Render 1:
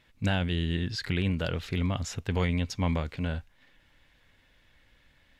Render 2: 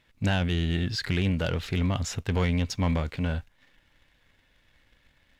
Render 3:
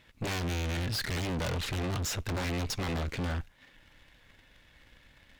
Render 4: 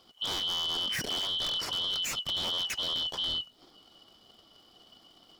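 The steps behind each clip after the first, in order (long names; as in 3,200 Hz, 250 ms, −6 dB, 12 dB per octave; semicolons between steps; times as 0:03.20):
leveller curve on the samples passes 1
sine wavefolder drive 9 dB, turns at −17 dBFS; tube saturation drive 27 dB, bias 0.75; level −3.5 dB
band-splitting scrambler in four parts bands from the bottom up 2413; surface crackle 210 per second −57 dBFS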